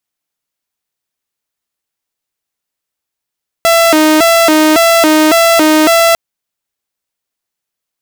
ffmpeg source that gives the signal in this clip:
-f lavfi -i "aevalsrc='0.708*(2*mod((489.5*t+179.5/1.8*(0.5-abs(mod(1.8*t,1)-0.5))),1)-1)':d=2.5:s=44100"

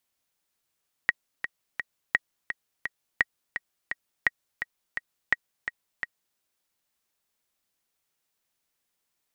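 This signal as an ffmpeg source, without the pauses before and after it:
-f lavfi -i "aevalsrc='pow(10,(-7-9.5*gte(mod(t,3*60/170),60/170))/20)*sin(2*PI*1900*mod(t,60/170))*exp(-6.91*mod(t,60/170)/0.03)':d=5.29:s=44100"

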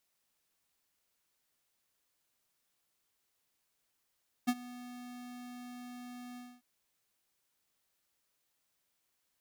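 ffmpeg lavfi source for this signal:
-f lavfi -i "aevalsrc='0.0447*(2*lt(mod(246*t,1),0.5)-1)':d=2.145:s=44100,afade=t=in:d=0.018,afade=t=out:st=0.018:d=0.05:silence=0.1,afade=t=out:st=1.9:d=0.245"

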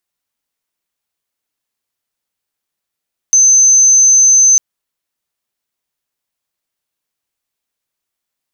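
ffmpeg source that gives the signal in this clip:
-f lavfi -i "aevalsrc='0.596*sin(2*PI*6180*t)':d=1.25:s=44100"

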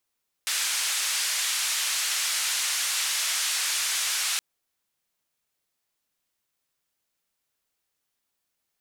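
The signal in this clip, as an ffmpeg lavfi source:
-f lavfi -i "anoisesrc=c=white:d=3.92:r=44100:seed=1,highpass=f=1500,lowpass=f=8900,volume=-17.5dB"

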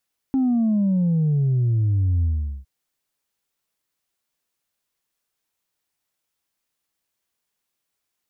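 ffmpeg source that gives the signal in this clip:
-f lavfi -i "aevalsrc='0.141*clip((2.31-t)/0.42,0,1)*tanh(1.12*sin(2*PI*270*2.31/log(65/270)*(exp(log(65/270)*t/2.31)-1)))/tanh(1.12)':d=2.31:s=44100"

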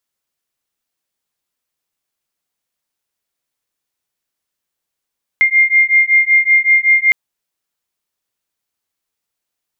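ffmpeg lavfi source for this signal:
-f lavfi -i "aevalsrc='0.266*(sin(2*PI*2110*t)+sin(2*PI*2115.3*t))':d=1.71:s=44100"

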